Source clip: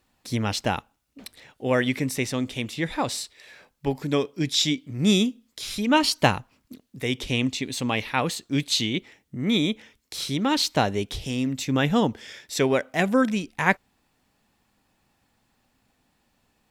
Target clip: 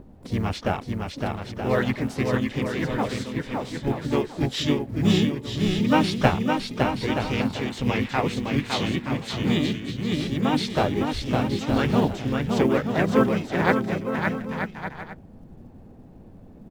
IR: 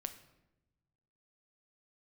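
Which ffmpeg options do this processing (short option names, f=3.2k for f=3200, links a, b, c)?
-filter_complex "[0:a]aemphasis=mode=reproduction:type=75fm,acrossover=split=600[a][b];[a]acompressor=mode=upward:threshold=-27dB:ratio=2.5[c];[c][b]amix=inputs=2:normalize=0,aecho=1:1:560|924|1161|1314|1414:0.631|0.398|0.251|0.158|0.1,acrusher=bits=9:mode=log:mix=0:aa=0.000001,asplit=4[d][e][f][g];[e]asetrate=22050,aresample=44100,atempo=2,volume=-10dB[h];[f]asetrate=37084,aresample=44100,atempo=1.18921,volume=-2dB[i];[g]asetrate=88200,aresample=44100,atempo=0.5,volume=-16dB[j];[d][h][i][j]amix=inputs=4:normalize=0,volume=-3dB"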